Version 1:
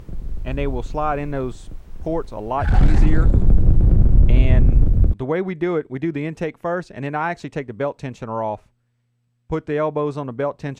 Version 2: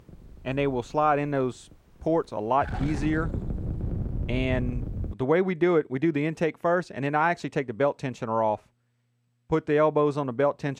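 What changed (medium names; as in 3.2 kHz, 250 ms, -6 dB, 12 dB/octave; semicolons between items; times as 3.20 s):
background -9.0 dB; master: add high-pass 140 Hz 6 dB/octave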